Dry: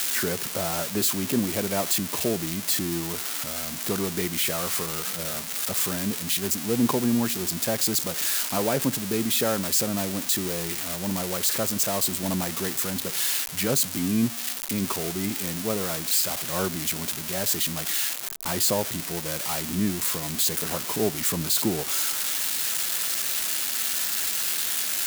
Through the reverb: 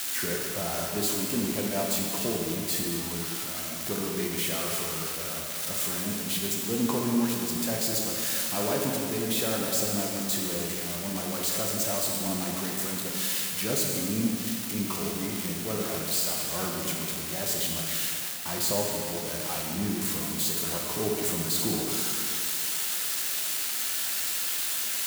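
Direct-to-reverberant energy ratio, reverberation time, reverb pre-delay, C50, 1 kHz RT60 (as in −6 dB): −1.5 dB, 2.4 s, 6 ms, 0.5 dB, 2.4 s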